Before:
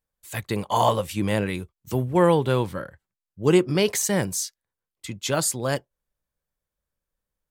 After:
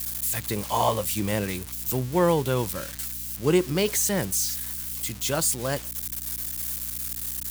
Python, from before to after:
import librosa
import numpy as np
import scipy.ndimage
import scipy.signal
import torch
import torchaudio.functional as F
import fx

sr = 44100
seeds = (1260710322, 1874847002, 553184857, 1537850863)

y = x + 0.5 * 10.0 ** (-20.0 / 20.0) * np.diff(np.sign(x), prepend=np.sign(x[:1]))
y = fx.add_hum(y, sr, base_hz=60, snr_db=17)
y = y * librosa.db_to_amplitude(-3.0)